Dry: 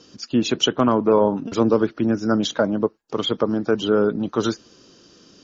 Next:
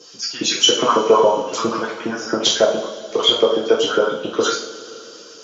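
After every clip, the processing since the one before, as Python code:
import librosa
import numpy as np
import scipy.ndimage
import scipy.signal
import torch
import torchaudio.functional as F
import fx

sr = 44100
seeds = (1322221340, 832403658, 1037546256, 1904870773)

y = fx.bass_treble(x, sr, bass_db=12, treble_db=12)
y = fx.filter_lfo_highpass(y, sr, shape='saw_up', hz=7.3, low_hz=400.0, high_hz=2900.0, q=2.9)
y = fx.rev_double_slope(y, sr, seeds[0], early_s=0.48, late_s=3.5, knee_db=-20, drr_db=-6.0)
y = y * librosa.db_to_amplitude(-4.5)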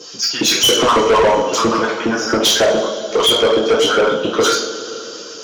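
y = 10.0 ** (-17.5 / 20.0) * np.tanh(x / 10.0 ** (-17.5 / 20.0))
y = y * librosa.db_to_amplitude(8.5)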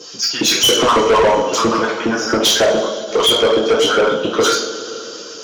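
y = fx.end_taper(x, sr, db_per_s=150.0)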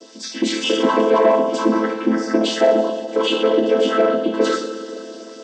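y = fx.chord_vocoder(x, sr, chord='minor triad', root=57)
y = y * librosa.db_to_amplitude(-1.5)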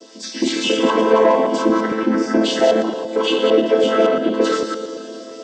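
y = fx.reverse_delay(x, sr, ms=113, wet_db=-5.0)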